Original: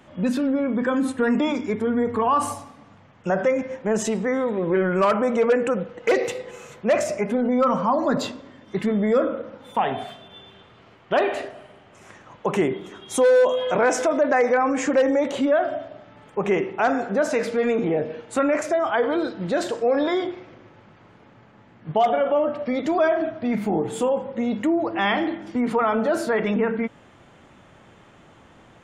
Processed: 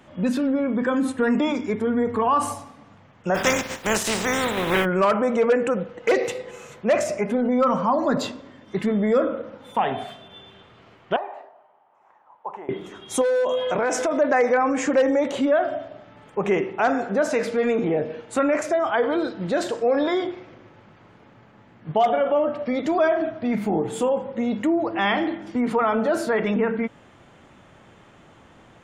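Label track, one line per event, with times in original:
3.340000	4.840000	spectral contrast lowered exponent 0.41
11.160000	12.690000	band-pass 880 Hz, Q 5.1
13.210000	14.150000	compressor, threshold -18 dBFS

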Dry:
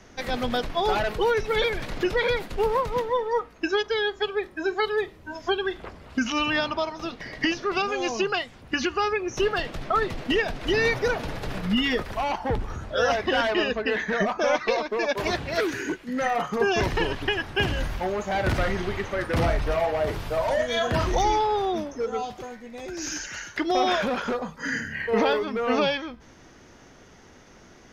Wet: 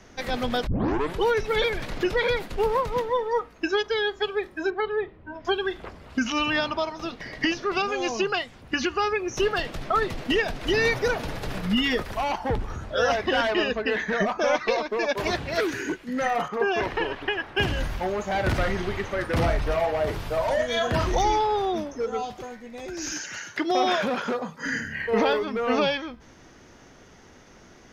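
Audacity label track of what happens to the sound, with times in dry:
0.670000	0.670000	tape start 0.54 s
4.700000	5.450000	air absorption 450 m
9.140000	12.520000	high shelf 6600 Hz +4.5 dB
16.480000	17.570000	tone controls bass -11 dB, treble -13 dB
23.120000	24.660000	HPF 94 Hz 24 dB/oct

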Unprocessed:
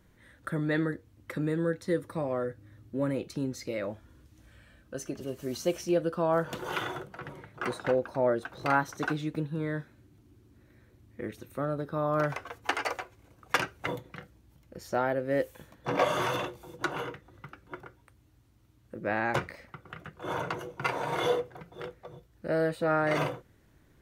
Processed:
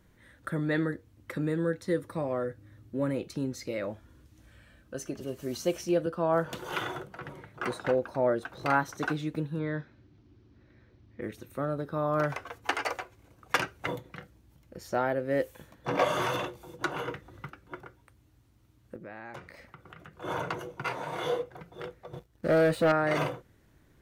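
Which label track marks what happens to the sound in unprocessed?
6.060000	6.720000	three-band expander depth 40%
9.590000	11.220000	steep low-pass 5600 Hz
17.080000	17.500000	gain +4.5 dB
18.960000	20.140000	compressor 3:1, threshold -45 dBFS
20.820000	21.510000	detuned doubles each way 50 cents
22.130000	22.920000	sample leveller passes 2

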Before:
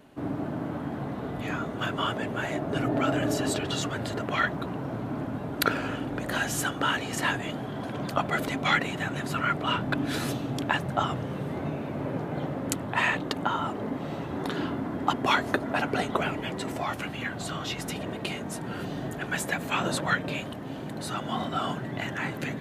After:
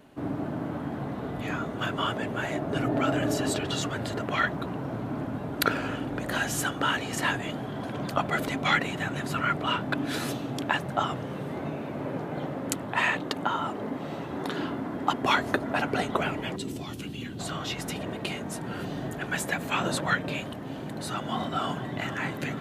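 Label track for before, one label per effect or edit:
9.670000	15.230000	low shelf 96 Hz -10 dB
16.560000	17.390000	band shelf 1100 Hz -13.5 dB 2.3 oct
21.120000	21.980000	echo throw 0.48 s, feedback 70%, level -13.5 dB

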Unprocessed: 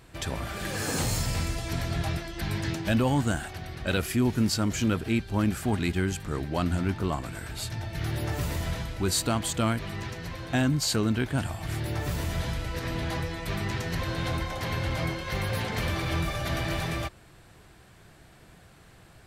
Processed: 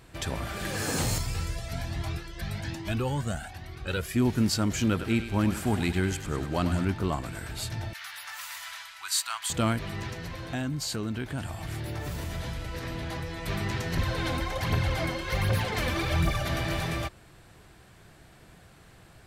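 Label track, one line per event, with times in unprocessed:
1.180000	4.160000	cascading flanger rising 1.2 Hz
4.890000	6.850000	thinning echo 98 ms, feedback 55%, level -9 dB
7.930000	9.500000	inverse Chebyshev high-pass stop band from 510 Hz
10.250000	13.440000	compressor 2:1, threshold -33 dBFS
13.970000	16.430000	phaser 1.3 Hz, delay 4.1 ms

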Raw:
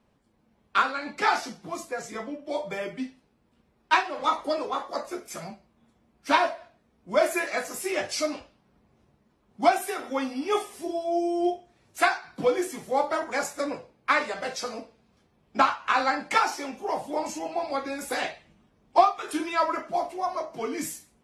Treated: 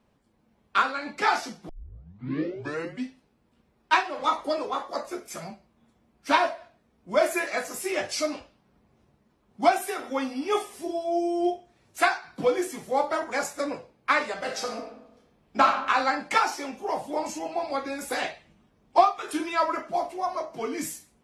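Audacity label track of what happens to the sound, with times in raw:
1.690000	1.690000	tape start 1.36 s
14.370000	15.740000	reverb throw, RT60 0.88 s, DRR 4.5 dB

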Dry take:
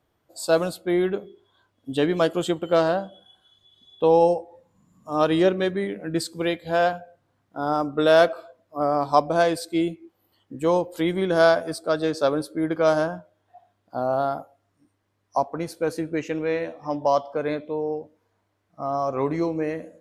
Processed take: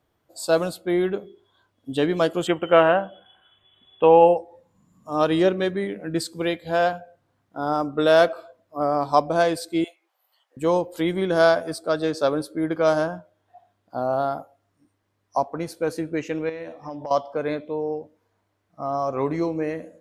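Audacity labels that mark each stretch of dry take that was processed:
2.470000	4.370000	EQ curve 250 Hz 0 dB, 2900 Hz +11 dB, 4600 Hz -28 dB, 8200 Hz -8 dB
9.840000	10.570000	steep high-pass 600 Hz
16.490000	17.110000	compressor, threshold -30 dBFS

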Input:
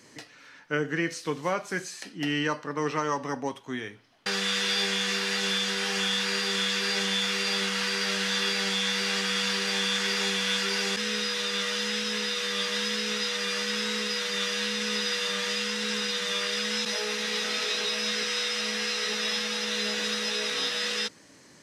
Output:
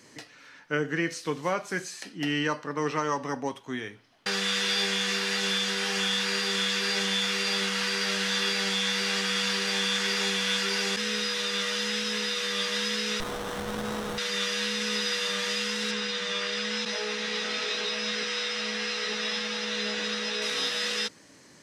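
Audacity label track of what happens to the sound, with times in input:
13.200000	14.180000	running maximum over 17 samples
15.910000	20.420000	air absorption 68 m

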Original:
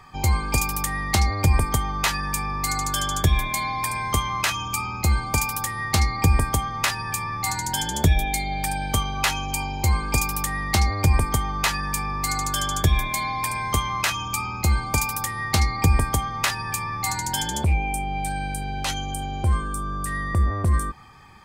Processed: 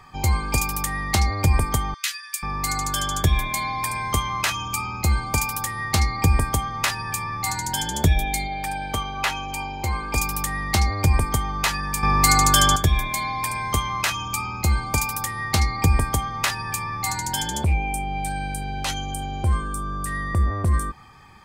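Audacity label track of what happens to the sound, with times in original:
1.940000	2.430000	Bessel high-pass 2500 Hz, order 6
8.470000	10.160000	tone controls bass -6 dB, treble -7 dB
12.030000	12.760000	gain +9 dB

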